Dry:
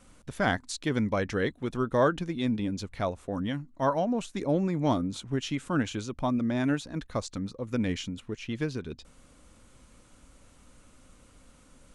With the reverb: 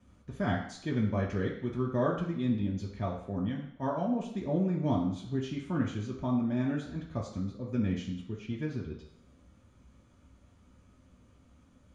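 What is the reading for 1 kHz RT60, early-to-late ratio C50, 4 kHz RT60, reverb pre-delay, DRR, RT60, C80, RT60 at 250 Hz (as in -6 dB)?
0.70 s, 5.0 dB, 0.70 s, 3 ms, -3.0 dB, 0.70 s, 8.5 dB, 0.70 s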